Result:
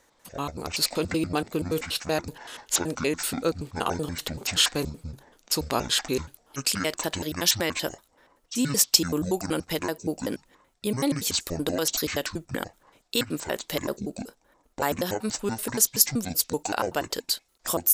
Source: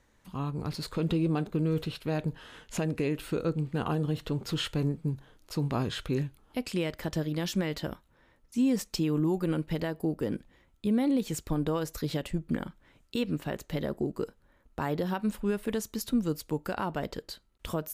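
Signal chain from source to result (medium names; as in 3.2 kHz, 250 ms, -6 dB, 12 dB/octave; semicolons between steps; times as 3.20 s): pitch shift switched off and on -10.5 st, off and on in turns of 95 ms; tone controls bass -15 dB, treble +13 dB; tape noise reduction on one side only decoder only; trim +8 dB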